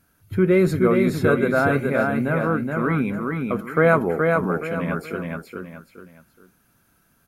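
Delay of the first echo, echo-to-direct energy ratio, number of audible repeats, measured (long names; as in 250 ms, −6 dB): 422 ms, −3.0 dB, 3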